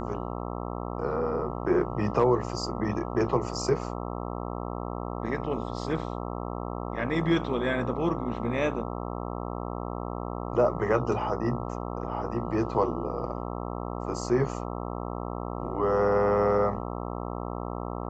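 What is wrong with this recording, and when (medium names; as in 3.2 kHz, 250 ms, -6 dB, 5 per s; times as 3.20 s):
buzz 60 Hz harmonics 22 -34 dBFS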